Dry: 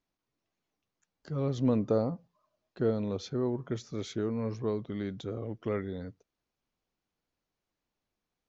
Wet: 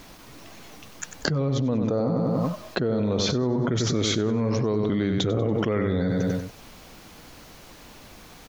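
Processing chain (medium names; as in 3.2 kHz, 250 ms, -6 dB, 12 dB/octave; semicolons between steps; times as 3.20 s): peaking EQ 380 Hz -3 dB 0.26 oct; on a send: feedback delay 95 ms, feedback 40%, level -9.5 dB; on the sum: level flattener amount 100%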